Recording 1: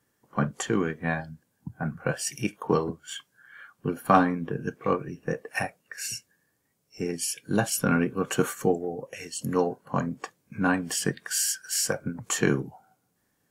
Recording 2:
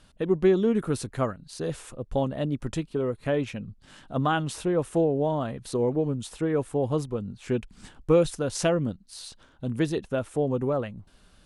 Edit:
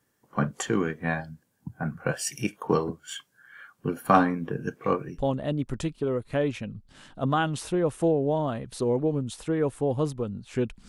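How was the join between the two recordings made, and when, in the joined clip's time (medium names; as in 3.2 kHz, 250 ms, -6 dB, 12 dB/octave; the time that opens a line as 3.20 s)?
recording 1
5.17 s: go over to recording 2 from 2.10 s, crossfade 0.20 s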